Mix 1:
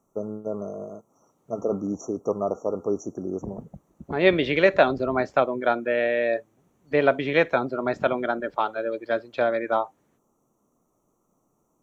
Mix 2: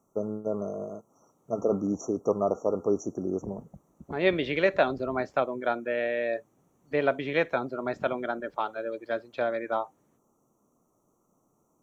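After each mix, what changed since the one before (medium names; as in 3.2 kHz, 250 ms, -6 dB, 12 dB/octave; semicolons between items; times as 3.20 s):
second voice -5.5 dB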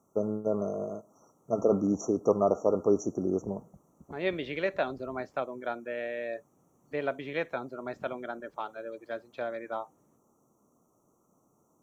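second voice -6.5 dB; reverb: on, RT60 0.35 s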